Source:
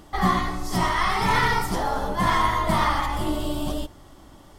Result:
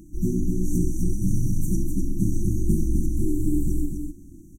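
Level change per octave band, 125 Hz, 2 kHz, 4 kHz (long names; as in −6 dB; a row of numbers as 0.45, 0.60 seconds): +4.5 dB, below −40 dB, below −30 dB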